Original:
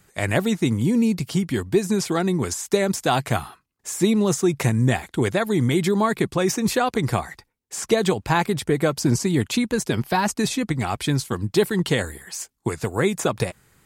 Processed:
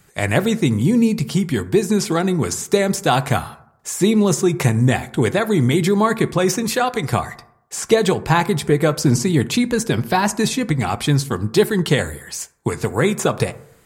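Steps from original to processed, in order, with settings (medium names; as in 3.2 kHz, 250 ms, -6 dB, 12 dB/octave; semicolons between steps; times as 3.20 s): 6.63–7.13 s: bass shelf 390 Hz -7.5 dB; reverberation RT60 0.75 s, pre-delay 3 ms, DRR 12 dB; trim +3.5 dB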